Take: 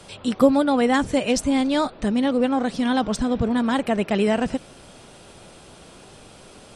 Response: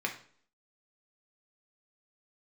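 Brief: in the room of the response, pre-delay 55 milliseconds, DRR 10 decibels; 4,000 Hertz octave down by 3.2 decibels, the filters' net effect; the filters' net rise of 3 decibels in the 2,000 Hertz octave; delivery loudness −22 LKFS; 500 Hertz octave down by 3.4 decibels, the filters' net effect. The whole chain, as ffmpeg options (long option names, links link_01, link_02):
-filter_complex "[0:a]equalizer=frequency=500:width_type=o:gain=-4,equalizer=frequency=2000:width_type=o:gain=5.5,equalizer=frequency=4000:width_type=o:gain=-7,asplit=2[link_01][link_02];[1:a]atrim=start_sample=2205,adelay=55[link_03];[link_02][link_03]afir=irnorm=-1:irlink=0,volume=-15.5dB[link_04];[link_01][link_04]amix=inputs=2:normalize=0"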